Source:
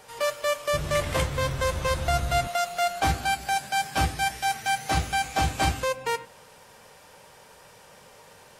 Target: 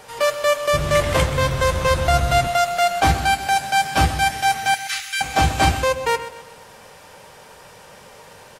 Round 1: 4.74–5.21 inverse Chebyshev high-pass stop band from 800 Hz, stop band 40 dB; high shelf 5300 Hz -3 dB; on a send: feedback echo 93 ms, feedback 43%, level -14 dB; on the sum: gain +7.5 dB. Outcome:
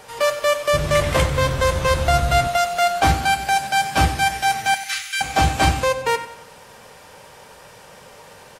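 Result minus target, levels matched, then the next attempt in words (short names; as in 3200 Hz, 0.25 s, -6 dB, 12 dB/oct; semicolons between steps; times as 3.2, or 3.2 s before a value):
echo 36 ms early
4.74–5.21 inverse Chebyshev high-pass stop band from 800 Hz, stop band 40 dB; high shelf 5300 Hz -3 dB; on a send: feedback echo 0.129 s, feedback 43%, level -14 dB; on the sum: gain +7.5 dB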